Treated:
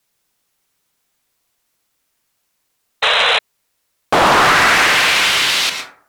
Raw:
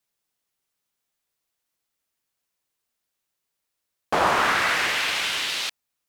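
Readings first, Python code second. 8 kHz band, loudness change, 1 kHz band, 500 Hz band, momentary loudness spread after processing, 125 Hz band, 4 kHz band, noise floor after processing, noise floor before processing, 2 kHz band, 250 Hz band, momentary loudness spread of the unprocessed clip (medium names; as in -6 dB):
+11.5 dB, +10.0 dB, +10.5 dB, +10.5 dB, 8 LU, +12.0 dB, +12.5 dB, -69 dBFS, -81 dBFS, +11.5 dB, +11.0 dB, 8 LU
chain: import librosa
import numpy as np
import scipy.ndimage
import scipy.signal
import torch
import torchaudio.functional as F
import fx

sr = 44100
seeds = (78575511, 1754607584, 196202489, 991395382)

y = fx.rev_plate(x, sr, seeds[0], rt60_s=0.53, hf_ratio=0.4, predelay_ms=100, drr_db=6.0)
y = fx.spec_paint(y, sr, seeds[1], shape='noise', start_s=3.02, length_s=0.37, low_hz=430.0, high_hz=4100.0, level_db=-24.0)
y = fx.fold_sine(y, sr, drive_db=8, ceiling_db=-7.0)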